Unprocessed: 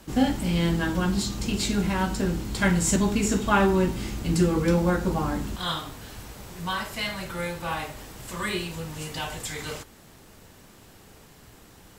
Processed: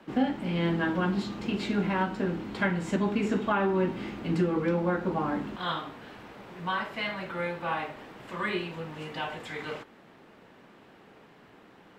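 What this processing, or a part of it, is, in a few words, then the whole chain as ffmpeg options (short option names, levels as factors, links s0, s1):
DJ mixer with the lows and highs turned down: -filter_complex "[0:a]acrossover=split=160 3200:gain=0.0891 1 0.0631[s0][s1][s2];[s0][s1][s2]amix=inputs=3:normalize=0,alimiter=limit=0.158:level=0:latency=1:release=469"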